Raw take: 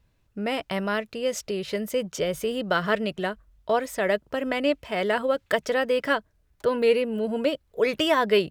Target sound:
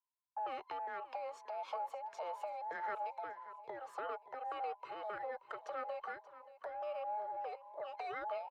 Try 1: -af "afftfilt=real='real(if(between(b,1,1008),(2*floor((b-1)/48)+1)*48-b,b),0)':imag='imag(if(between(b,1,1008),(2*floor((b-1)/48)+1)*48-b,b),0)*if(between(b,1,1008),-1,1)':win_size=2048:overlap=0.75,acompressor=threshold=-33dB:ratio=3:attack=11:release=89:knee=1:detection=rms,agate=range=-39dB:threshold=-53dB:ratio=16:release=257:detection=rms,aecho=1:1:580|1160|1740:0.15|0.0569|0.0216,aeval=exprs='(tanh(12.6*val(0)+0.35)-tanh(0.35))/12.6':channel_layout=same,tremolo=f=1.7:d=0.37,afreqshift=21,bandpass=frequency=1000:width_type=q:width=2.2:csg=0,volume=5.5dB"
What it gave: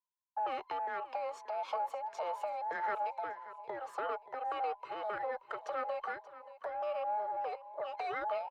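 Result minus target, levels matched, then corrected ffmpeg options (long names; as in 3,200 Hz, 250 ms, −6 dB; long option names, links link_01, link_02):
downward compressor: peak gain reduction −5.5 dB
-af "afftfilt=real='real(if(between(b,1,1008),(2*floor((b-1)/48)+1)*48-b,b),0)':imag='imag(if(between(b,1,1008),(2*floor((b-1)/48)+1)*48-b,b),0)*if(between(b,1,1008),-1,1)':win_size=2048:overlap=0.75,acompressor=threshold=-41dB:ratio=3:attack=11:release=89:knee=1:detection=rms,agate=range=-39dB:threshold=-53dB:ratio=16:release=257:detection=rms,aecho=1:1:580|1160|1740:0.15|0.0569|0.0216,aeval=exprs='(tanh(12.6*val(0)+0.35)-tanh(0.35))/12.6':channel_layout=same,tremolo=f=1.7:d=0.37,afreqshift=21,bandpass=frequency=1000:width_type=q:width=2.2:csg=0,volume=5.5dB"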